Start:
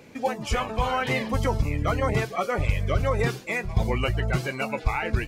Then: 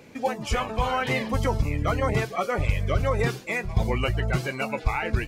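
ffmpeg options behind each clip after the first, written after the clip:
-af anull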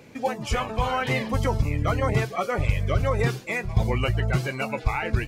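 -af "equalizer=f=120:w=3.7:g=5"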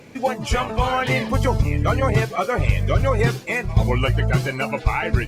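-af "volume=1.68" -ar 48000 -c:a libopus -b:a 48k

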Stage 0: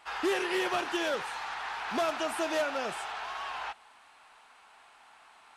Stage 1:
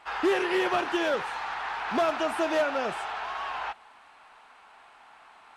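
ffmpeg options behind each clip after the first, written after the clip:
-af "highshelf=f=3900:g=-10.5,volume=1.78"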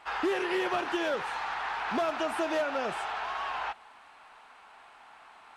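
-af "acompressor=threshold=0.0355:ratio=2"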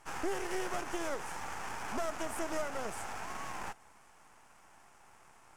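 -af "aeval=exprs='max(val(0),0)':c=same,aexciter=amount=11.5:drive=7.1:freq=5900,aemphasis=mode=reproduction:type=75fm,volume=0.708"

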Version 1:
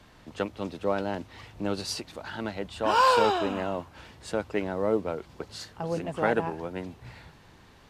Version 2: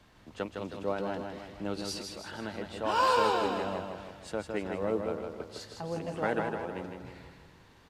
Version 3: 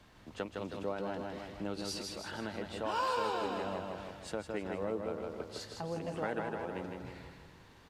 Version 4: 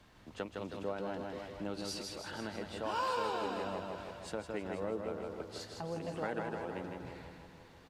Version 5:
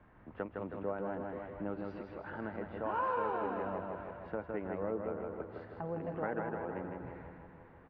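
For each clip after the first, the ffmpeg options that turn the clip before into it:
-af "aecho=1:1:158|316|474|632|790|948:0.562|0.281|0.141|0.0703|0.0351|0.0176,volume=0.531"
-af "acompressor=threshold=0.0158:ratio=2"
-af "aecho=1:1:486|972|1458|1944:0.2|0.0738|0.0273|0.0101,volume=0.841"
-af "lowpass=f=1900:w=0.5412,lowpass=f=1900:w=1.3066,volume=1.12"

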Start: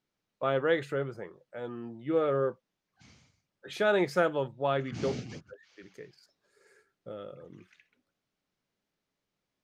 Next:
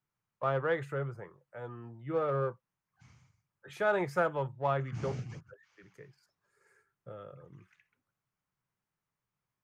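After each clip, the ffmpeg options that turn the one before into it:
-filter_complex "[0:a]equalizer=f=125:t=o:w=1:g=9,equalizer=f=250:t=o:w=1:g=-8,equalizer=f=1000:t=o:w=1:g=7,equalizer=f=4000:t=o:w=1:g=-9,acrossover=split=380|700[s0][s1][s2];[s1]adynamicsmooth=sensitivity=6:basefreq=530[s3];[s0][s3][s2]amix=inputs=3:normalize=0,volume=0.631"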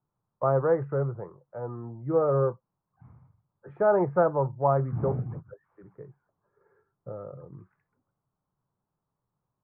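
-af "lowpass=f=1100:w=0.5412,lowpass=f=1100:w=1.3066,volume=2.51"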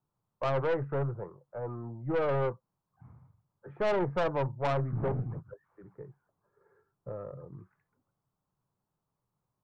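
-af "aeval=exprs='(tanh(17.8*val(0)+0.35)-tanh(0.35))/17.8':c=same"

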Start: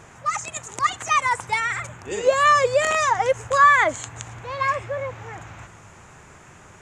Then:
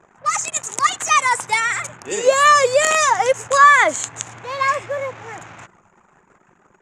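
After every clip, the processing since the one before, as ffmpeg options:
-af "highpass=170,anlmdn=0.1,highshelf=f=5800:g=11,volume=1.5"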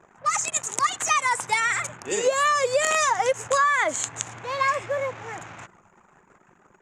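-af "acompressor=threshold=0.158:ratio=6,volume=0.794"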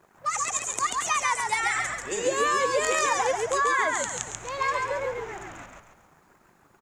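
-filter_complex "[0:a]acrusher=bits=10:mix=0:aa=0.000001,asplit=6[s0][s1][s2][s3][s4][s5];[s1]adelay=138,afreqshift=-64,volume=0.708[s6];[s2]adelay=276,afreqshift=-128,volume=0.299[s7];[s3]adelay=414,afreqshift=-192,volume=0.124[s8];[s4]adelay=552,afreqshift=-256,volume=0.0525[s9];[s5]adelay=690,afreqshift=-320,volume=0.0221[s10];[s0][s6][s7][s8][s9][s10]amix=inputs=6:normalize=0,volume=0.596"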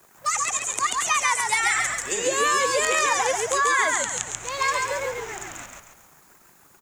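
-filter_complex "[0:a]acrossover=split=280|600|3600[s0][s1][s2][s3];[s3]acompressor=threshold=0.00891:ratio=6[s4];[s0][s1][s2][s4]amix=inputs=4:normalize=0,crystalizer=i=4.5:c=0"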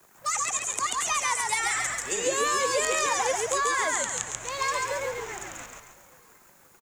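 -filter_complex "[0:a]acrossover=split=130|1100|3300[s0][s1][s2][s3];[s2]asoftclip=type=tanh:threshold=0.0422[s4];[s0][s1][s4][s3]amix=inputs=4:normalize=0,aecho=1:1:527|1054|1581:0.075|0.03|0.012,volume=0.75"

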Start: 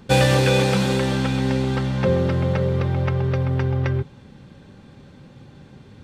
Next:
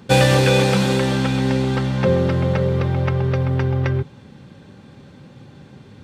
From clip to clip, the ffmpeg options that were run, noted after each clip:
-af "highpass=73,volume=1.33"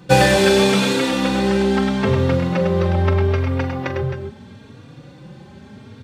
-filter_complex "[0:a]asplit=2[s0][s1];[s1]aecho=0:1:43|102|264|279:0.282|0.531|0.335|0.141[s2];[s0][s2]amix=inputs=2:normalize=0,asplit=2[s3][s4];[s4]adelay=3.6,afreqshift=0.78[s5];[s3][s5]amix=inputs=2:normalize=1,volume=1.58"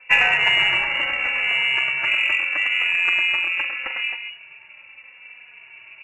-af "aeval=exprs='val(0)*sin(2*PI*400*n/s)':c=same,lowpass=f=2500:t=q:w=0.5098,lowpass=f=2500:t=q:w=0.6013,lowpass=f=2500:t=q:w=0.9,lowpass=f=2500:t=q:w=2.563,afreqshift=-2900,aeval=exprs='0.891*(cos(1*acos(clip(val(0)/0.891,-1,1)))-cos(1*PI/2))+0.0141*(cos(7*acos(clip(val(0)/0.891,-1,1)))-cos(7*PI/2))':c=same"

